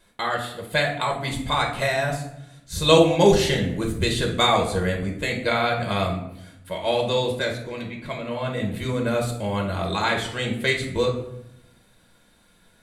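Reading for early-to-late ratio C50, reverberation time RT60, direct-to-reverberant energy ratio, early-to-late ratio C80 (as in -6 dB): 6.5 dB, 0.80 s, -0.5 dB, 10.5 dB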